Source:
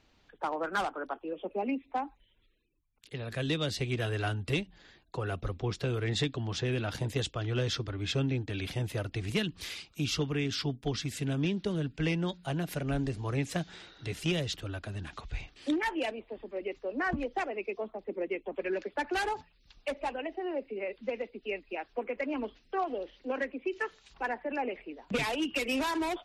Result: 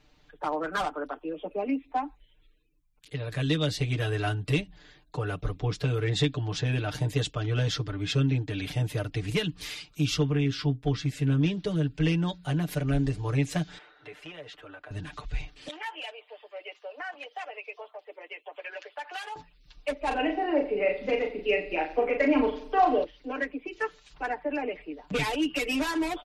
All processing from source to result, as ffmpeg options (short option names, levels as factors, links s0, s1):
-filter_complex "[0:a]asettb=1/sr,asplit=3[s0][s1][s2];[s0]atrim=end=10.224[s3];[s1]atrim=start=10.22:end=11.41,asetpts=PTS-STARTPTS,afade=t=in:d=0.004:c=qsin,afade=t=out:st=1.186:d=0.004:c=qsin,highshelf=f=4300:g=-10,asplit=2[s4][s5];[s5]adelay=15,volume=0.266[s6];[s4][s6]amix=inputs=2:normalize=0,atrim=end_sample=52479[s7];[s2]atrim=start=11.406[s8];[s3][s7]acrossfade=d=0.004:c1=hsin:c2=qsin[s9];[s9][s8]acrossfade=d=0.004:c1=qsin:c2=hsin,asettb=1/sr,asplit=3[s10][s11][s12];[s10]atrim=end=13.784[s13];[s11]atrim=start=13.78:end=14.91,asetpts=PTS-STARTPTS,afade=t=in:d=0.004:c=qsin,afade=t=out:st=1.126:d=0.004:c=qsin,acrossover=split=410 2500:gain=0.0708 1 0.1[s14][s15][s16];[s14][s15][s16]amix=inputs=3:normalize=0,acompressor=threshold=0.00708:ratio=3:attack=3.2:release=140:knee=1:detection=peak[s17];[s12]atrim=start=14.906[s18];[s13][s17]acrossfade=d=0.004:c1=hsin:c2=qsin[s19];[s19][s18]acrossfade=d=0.004:c1=qsin:c2=hsin,asettb=1/sr,asplit=3[s20][s21][s22];[s20]atrim=end=15.684[s23];[s21]atrim=start=15.68:end=19.36,asetpts=PTS-STARTPTS,afade=t=in:d=0.004:c=qsin,afade=t=out:st=3.676:d=0.004:c=qsin,highpass=f=610:w=0.5412,highpass=f=610:w=1.3066,equalizer=f=3000:t=o:w=0.34:g=7,acompressor=threshold=0.0126:ratio=3:attack=3.2:release=140:knee=1:detection=peak[s24];[s22]atrim=start=19.356[s25];[s23][s24]acrossfade=d=0.004:c1=hsin:c2=qsin[s26];[s26][s25]acrossfade=d=0.004:c1=qsin:c2=hsin,asettb=1/sr,asplit=3[s27][s28][s29];[s27]atrim=end=20.074[s30];[s28]atrim=start=20.07:end=23.04,asetpts=PTS-STARTPTS,afade=t=in:d=0.004:c=qsin,afade=t=out:st=2.966:d=0.004:c=qsin,acontrast=53,asplit=2[s31][s32];[s32]adelay=38,volume=0.562[s33];[s31][s33]amix=inputs=2:normalize=0,atrim=end_sample=130977,asplit=2[s34][s35];[s35]adelay=88,lowpass=f=3500:p=1,volume=0.211,asplit=2[s36][s37];[s37]adelay=88,lowpass=f=3500:p=1,volume=0.46,asplit=2[s38][s39];[s39]adelay=88,lowpass=f=3500:p=1,volume=0.46,asplit=2[s40][s41];[s41]adelay=88,lowpass=f=3500:p=1,volume=0.46[s42];[s34][s36][s38][s40][s42]amix=inputs=5:normalize=0,atrim=end_sample=130977[s43];[s29]atrim=start=23.036[s44];[s30][s43]acrossfade=d=0.004:c1=hsin:c2=qsin[s45];[s45][s44]acrossfade=d=0.004:c1=qsin:c2=hsin,lowshelf=f=81:g=6.5,aecho=1:1:6.7:0.86"